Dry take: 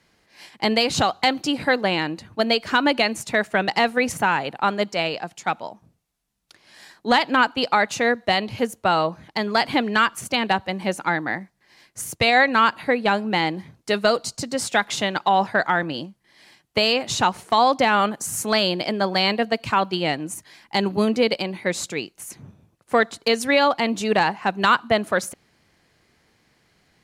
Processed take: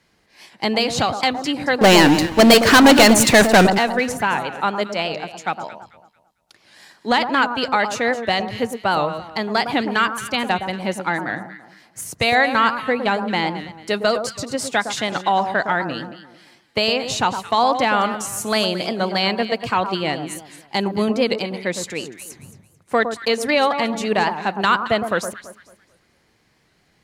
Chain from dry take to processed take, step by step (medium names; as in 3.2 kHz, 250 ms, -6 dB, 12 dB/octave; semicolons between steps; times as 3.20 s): 1.81–3.67 s: waveshaping leveller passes 5; echo whose repeats swap between lows and highs 111 ms, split 1.3 kHz, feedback 53%, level -7.5 dB; warped record 78 rpm, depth 100 cents